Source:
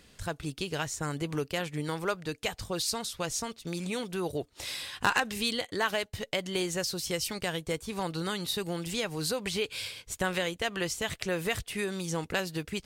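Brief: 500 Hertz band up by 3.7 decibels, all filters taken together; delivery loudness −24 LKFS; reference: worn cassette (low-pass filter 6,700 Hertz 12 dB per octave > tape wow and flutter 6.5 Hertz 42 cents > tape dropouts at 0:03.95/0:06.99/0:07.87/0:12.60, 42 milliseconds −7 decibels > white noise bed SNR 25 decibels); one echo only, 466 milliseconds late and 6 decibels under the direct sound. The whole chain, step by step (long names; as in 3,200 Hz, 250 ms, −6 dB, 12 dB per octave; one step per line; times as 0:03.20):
low-pass filter 6,700 Hz 12 dB per octave
parametric band 500 Hz +4.5 dB
single-tap delay 466 ms −6 dB
tape wow and flutter 6.5 Hz 42 cents
tape dropouts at 0:03.95/0:06.99/0:07.87/0:12.60, 42 ms −7 dB
white noise bed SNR 25 dB
level +6.5 dB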